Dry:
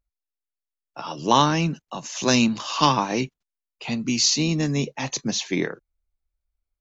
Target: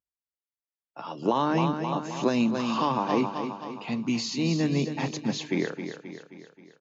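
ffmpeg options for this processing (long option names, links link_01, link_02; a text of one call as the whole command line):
ffmpeg -i in.wav -filter_complex "[0:a]highpass=110,bandreject=frequency=50:width_type=h:width=6,bandreject=frequency=100:width_type=h:width=6,bandreject=frequency=150:width_type=h:width=6,aecho=1:1:265|530|795|1060|1325|1590:0.316|0.164|0.0855|0.0445|0.0231|0.012,alimiter=limit=-13dB:level=0:latency=1:release=176,asettb=1/sr,asplit=3[link_01][link_02][link_03];[link_01]atrim=end=1.224[link_04];[link_02]atrim=start=1.22:end=3.85,asetpts=PTS-STARTPTS,afade=type=in:duration=0.004:curve=qsin,afade=type=out:start_time=2.626:duration=0.004:curve=qsin,equalizer=frequency=480:width=0.47:gain=5.5[link_05];[link_03]atrim=start=3.846[link_06];[link_04][link_05]acrossfade=duration=0.004:curve1=hsin:curve2=qsin[link_07];[link_07][link_06]acrossfade=duration=0.004:curve1=qsin:curve2=hsin,dynaudnorm=framelen=220:gausssize=7:maxgain=8dB,highshelf=frequency=3700:gain=-11.5,bandreject=frequency=5800:width=9.7,volume=-9dB" out.wav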